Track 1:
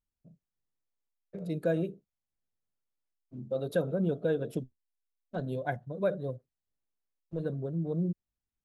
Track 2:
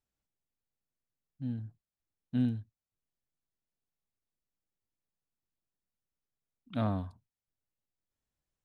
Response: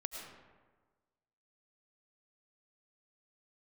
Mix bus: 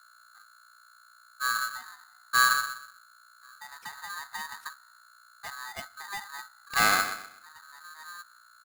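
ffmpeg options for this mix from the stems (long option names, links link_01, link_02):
-filter_complex "[0:a]acompressor=threshold=-39dB:ratio=2,adelay=100,volume=-2dB,asplit=2[link_01][link_02];[link_02]volume=-23dB[link_03];[1:a]equalizer=frequency=210:width=0.54:gain=-3,acontrast=65,volume=3dB,asplit=3[link_04][link_05][link_06];[link_05]volume=-8dB[link_07];[link_06]apad=whole_len=385595[link_08];[link_01][link_08]sidechaincompress=threshold=-45dB:ratio=4:attack=45:release=1060[link_09];[2:a]atrim=start_sample=2205[link_10];[link_03][link_10]afir=irnorm=-1:irlink=0[link_11];[link_07]aecho=0:1:124|248|372|496:1|0.3|0.09|0.027[link_12];[link_09][link_04][link_11][link_12]amix=inputs=4:normalize=0,aeval=exprs='val(0)+0.00158*(sin(2*PI*60*n/s)+sin(2*PI*2*60*n/s)/2+sin(2*PI*3*60*n/s)/3+sin(2*PI*4*60*n/s)/4+sin(2*PI*5*60*n/s)/5)':channel_layout=same,aeval=exprs='val(0)*sgn(sin(2*PI*1400*n/s))':channel_layout=same"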